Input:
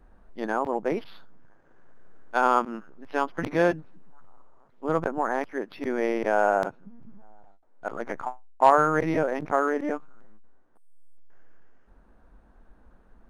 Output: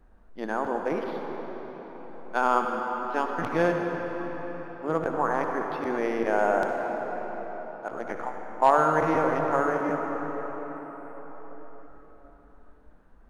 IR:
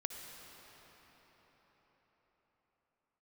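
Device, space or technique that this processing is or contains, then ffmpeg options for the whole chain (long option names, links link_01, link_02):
cathedral: -filter_complex "[1:a]atrim=start_sample=2205[link_01];[0:a][link_01]afir=irnorm=-1:irlink=0,asettb=1/sr,asplit=3[link_02][link_03][link_04];[link_02]atrim=end=5.134[link_05];[link_03]atrim=start=5.13:end=5.98,asetpts=PTS-STARTPTS,afade=type=in:duration=0.004:curve=qsin,afade=type=out:start_time=0.846:duration=0.004:curve=qsin,equalizer=frequency=1100:width_type=o:width=0.59:gain=5.5[link_06];[link_04]atrim=start=5.976[link_07];[link_05][link_06]acrossfade=duration=0.004:curve1=hsin:curve2=qsin[link_08];[link_08][link_07]acrossfade=duration=0.004:curve1=qsin:curve2=hsin"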